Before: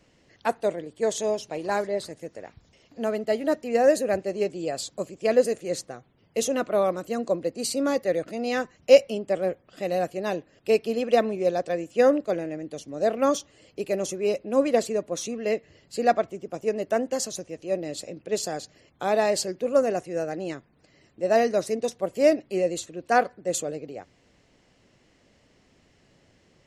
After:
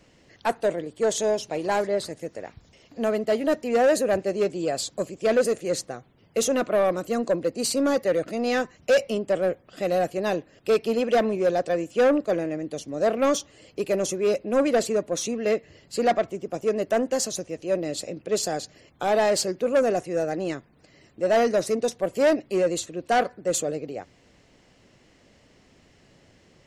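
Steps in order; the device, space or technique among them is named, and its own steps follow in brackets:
saturation between pre-emphasis and de-emphasis (high-shelf EQ 11,000 Hz +10.5 dB; soft clipping −18.5 dBFS, distortion −10 dB; high-shelf EQ 11,000 Hz −10.5 dB)
level +4 dB

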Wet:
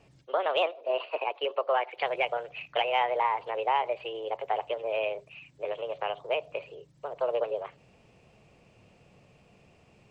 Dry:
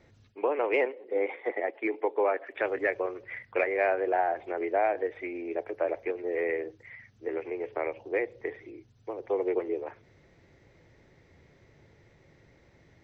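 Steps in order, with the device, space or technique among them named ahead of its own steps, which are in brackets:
nightcore (speed change +29%)

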